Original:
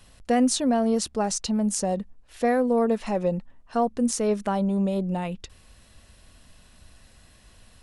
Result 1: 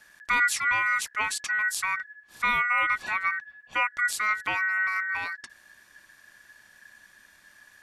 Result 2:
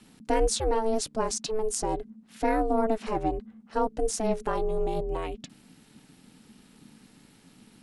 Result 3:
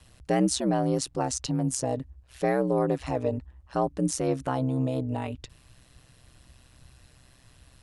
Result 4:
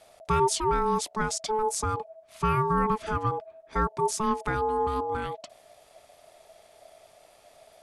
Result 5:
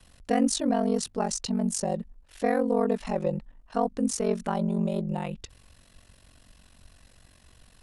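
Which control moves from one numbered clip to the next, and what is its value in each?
ring modulator, frequency: 1.7 kHz, 220 Hz, 64 Hz, 650 Hz, 23 Hz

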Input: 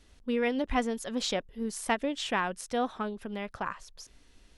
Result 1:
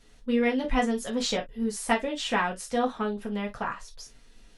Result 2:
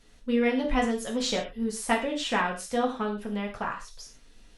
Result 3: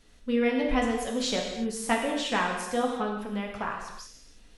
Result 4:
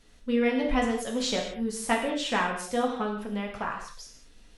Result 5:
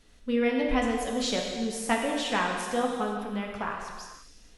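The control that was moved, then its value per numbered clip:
gated-style reverb, gate: 80 ms, 150 ms, 370 ms, 250 ms, 540 ms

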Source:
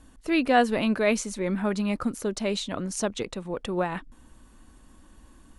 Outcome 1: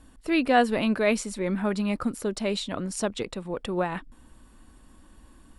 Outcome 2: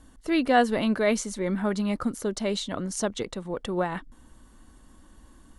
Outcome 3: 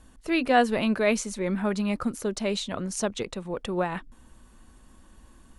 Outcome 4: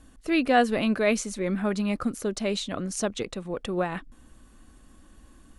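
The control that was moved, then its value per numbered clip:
band-stop, frequency: 6.3 kHz, 2.5 kHz, 290 Hz, 930 Hz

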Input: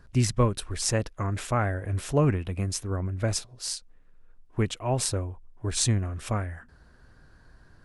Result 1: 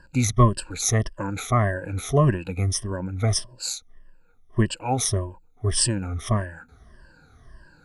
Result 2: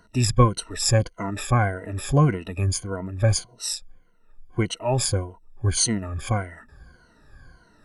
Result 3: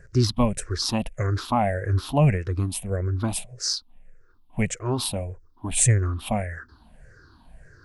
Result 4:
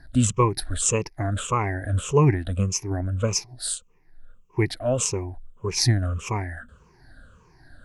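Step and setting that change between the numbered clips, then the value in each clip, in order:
drifting ripple filter, ripples per octave: 1.3, 1.9, 0.52, 0.77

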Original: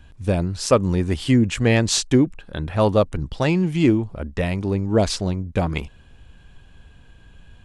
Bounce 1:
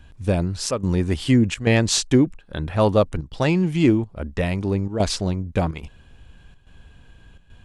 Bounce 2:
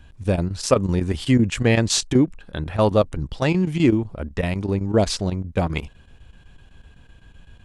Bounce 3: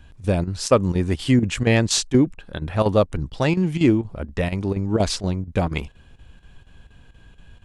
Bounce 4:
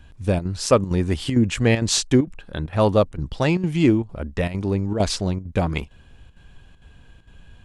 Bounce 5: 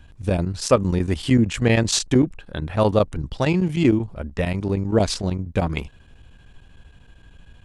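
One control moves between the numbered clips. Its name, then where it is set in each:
square tremolo, rate: 1.2 Hz, 7.9 Hz, 4.2 Hz, 2.2 Hz, 13 Hz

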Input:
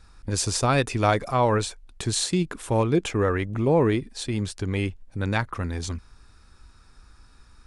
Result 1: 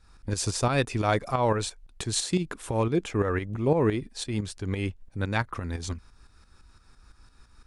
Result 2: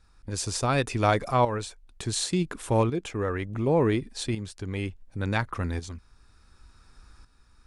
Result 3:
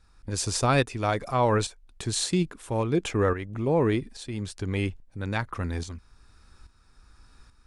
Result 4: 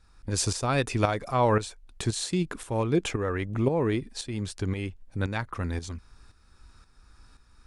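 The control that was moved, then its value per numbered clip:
tremolo, rate: 5.9 Hz, 0.69 Hz, 1.2 Hz, 1.9 Hz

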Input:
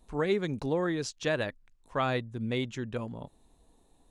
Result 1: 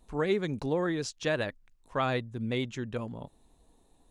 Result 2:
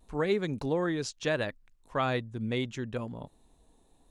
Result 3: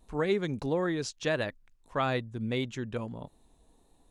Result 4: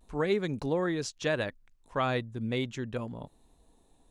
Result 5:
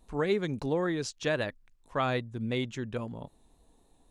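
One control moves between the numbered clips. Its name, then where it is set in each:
vibrato, rate: 12 Hz, 0.74 Hz, 1.6 Hz, 0.42 Hz, 3.7 Hz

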